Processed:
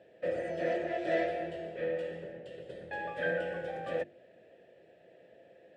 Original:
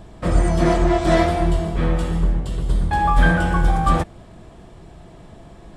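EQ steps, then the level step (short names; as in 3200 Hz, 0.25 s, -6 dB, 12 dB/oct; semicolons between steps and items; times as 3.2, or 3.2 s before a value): vowel filter e; HPF 79 Hz 24 dB/oct; notches 50/100/150/200/250/300/350 Hz; 0.0 dB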